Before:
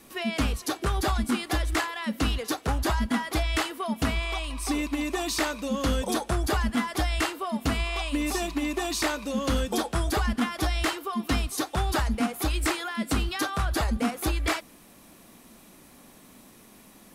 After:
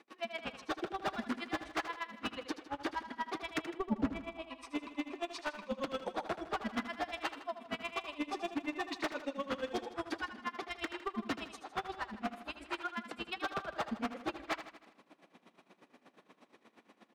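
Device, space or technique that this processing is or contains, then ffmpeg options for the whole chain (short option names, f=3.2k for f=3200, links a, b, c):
helicopter radio: -filter_complex "[0:a]highpass=300,lowpass=2.9k,aeval=exprs='val(0)*pow(10,-39*(0.5-0.5*cos(2*PI*8.4*n/s))/20)':c=same,asoftclip=type=hard:threshold=-29.5dB,asettb=1/sr,asplit=3[a][b][c];[a]atrim=end=3.584[d];[b]atrim=start=3.58:end=4.42,asetpts=PTS-STARTPTS,afade=t=in:d=0.004:c=qsin,afade=t=out:st=0.836:d=0.004:c=qsin,tiltshelf=f=680:g=9.5[e];[c]atrim=start=4.416[f];[d][e]acrossfade=d=0.004:c1=hsin:c2=qsin[g];[g][f]acrossfade=d=0.004:c1=qsin:c2=hsin,aecho=1:1:79|158|237|316|395|474:0.266|0.144|0.0776|0.0419|0.0226|0.0122"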